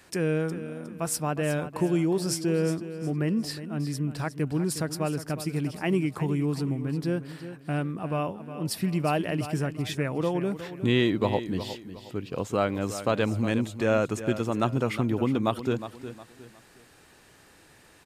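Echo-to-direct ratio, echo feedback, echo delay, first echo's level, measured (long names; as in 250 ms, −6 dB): −11.5 dB, 33%, 361 ms, −12.0 dB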